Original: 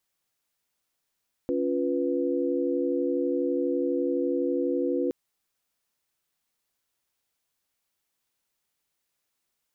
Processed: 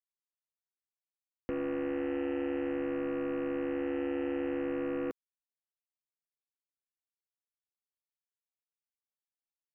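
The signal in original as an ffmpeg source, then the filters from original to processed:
-f lavfi -i "aevalsrc='0.0398*(sin(2*PI*277.18*t)+sin(2*PI*349.23*t)+sin(2*PI*493.88*t))':duration=3.62:sample_rate=44100"
-filter_complex "[0:a]acrossover=split=130[link_01][link_02];[link_02]alimiter=level_in=3dB:limit=-24dB:level=0:latency=1:release=86,volume=-3dB[link_03];[link_01][link_03]amix=inputs=2:normalize=0,aeval=exprs='0.0501*(cos(1*acos(clip(val(0)/0.0501,-1,1)))-cos(1*PI/2))+0.00708*(cos(7*acos(clip(val(0)/0.0501,-1,1)))-cos(7*PI/2))+0.000355*(cos(8*acos(clip(val(0)/0.0501,-1,1)))-cos(8*PI/2))':channel_layout=same"

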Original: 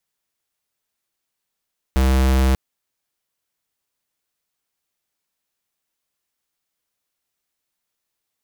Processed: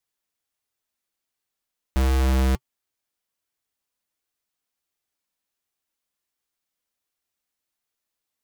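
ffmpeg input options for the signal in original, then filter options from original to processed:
-f lavfi -i "aevalsrc='0.168*(2*lt(mod(65.6*t,1),0.5)-1)':duration=0.59:sample_rate=44100"
-af "flanger=delay=2.5:depth=1.6:regen=-59:speed=1.4:shape=sinusoidal"

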